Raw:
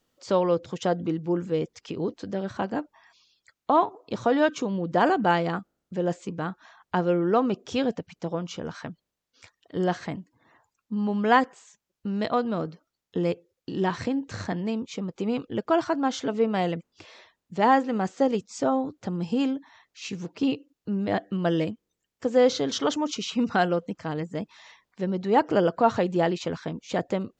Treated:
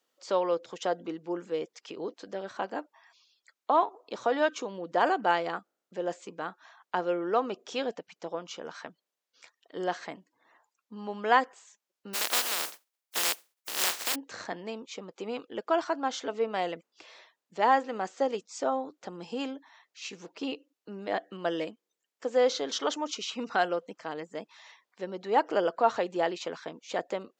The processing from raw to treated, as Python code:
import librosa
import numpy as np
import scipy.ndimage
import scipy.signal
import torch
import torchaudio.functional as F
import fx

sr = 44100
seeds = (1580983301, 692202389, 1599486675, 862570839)

y = fx.spec_flatten(x, sr, power=0.12, at=(12.13, 14.14), fade=0.02)
y = scipy.signal.sosfilt(scipy.signal.butter(2, 430.0, 'highpass', fs=sr, output='sos'), y)
y = y * librosa.db_to_amplitude(-2.5)